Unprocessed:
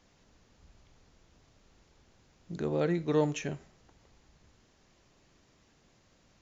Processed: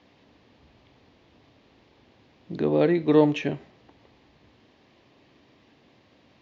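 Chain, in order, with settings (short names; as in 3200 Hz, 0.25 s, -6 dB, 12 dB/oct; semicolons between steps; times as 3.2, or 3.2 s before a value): speaker cabinet 110–4100 Hz, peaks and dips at 170 Hz -6 dB, 280 Hz +4 dB, 1400 Hz -7 dB; gain +8.5 dB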